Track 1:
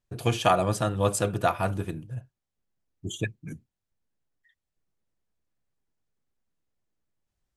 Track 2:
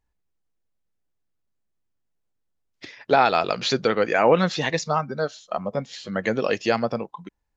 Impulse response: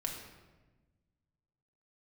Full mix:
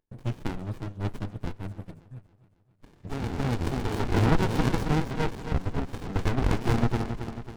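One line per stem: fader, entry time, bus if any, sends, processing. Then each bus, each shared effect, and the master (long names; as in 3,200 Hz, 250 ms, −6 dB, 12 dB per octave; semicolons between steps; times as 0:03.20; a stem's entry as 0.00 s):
−5.5 dB, 0.00 s, no send, echo send −19.5 dB, reverb reduction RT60 1.6 s
+2.0 dB, 0.00 s, send −15.5 dB, echo send −7.5 dB, phase distortion by the signal itself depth 0.16 ms; high-pass filter 250 Hz 24 dB per octave; automatic ducking −19 dB, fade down 0.20 s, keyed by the first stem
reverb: on, RT60 1.2 s, pre-delay 4 ms
echo: repeating echo 272 ms, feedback 52%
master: windowed peak hold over 65 samples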